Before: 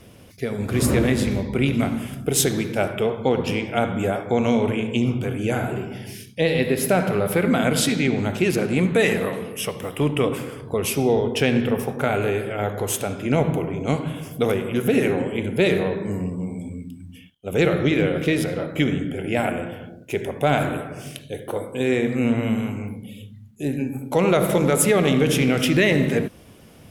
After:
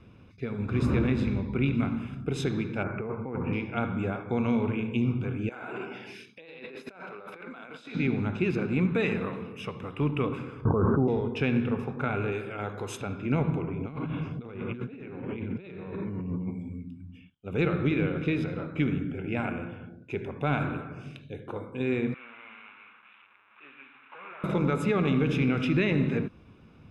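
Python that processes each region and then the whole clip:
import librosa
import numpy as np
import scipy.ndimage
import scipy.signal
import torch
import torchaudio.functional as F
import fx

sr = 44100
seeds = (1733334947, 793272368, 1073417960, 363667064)

y = fx.chain(x, sr, fx.steep_lowpass(hz=2300.0, slope=48),
    fx.over_compress(threshold_db=-24.0, ratio=-1.0), at=(2.83, 3.53))
y = fx.chain(y, sr, fx.highpass(hz=460.0, slope=12),
    fx.over_compress(threshold_db=-34.0, ratio=-1.0), at=(5.49, 7.95))
y = fx.chain(y, sr, fx.steep_lowpass(hz=1600.0, slope=96),
    fx.env_flatten(amount_pct=100), at=(10.65, 11.08))
y = fx.chain(y, sr, fx.highpass(hz=59.0, slope=12),
    fx.bass_treble(bass_db=-5, treble_db=10), at=(12.32, 13.01))
y = fx.chain(y, sr, fx.lowpass(hz=4000.0, slope=12),
    fx.over_compress(threshold_db=-30.0, ratio=-1.0), at=(13.68, 16.51))
y = fx.chain(y, sr, fx.delta_mod(bps=16000, step_db=-32.5),
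    fx.highpass(hz=1500.0, slope=12), at=(22.14, 24.44))
y = scipy.signal.sosfilt(scipy.signal.butter(2, 2700.0, 'lowpass', fs=sr, output='sos'), y)
y = y + 0.51 * np.pad(y, (int(0.8 * sr / 1000.0), 0))[:len(y)]
y = y * librosa.db_to_amplitude(-7.5)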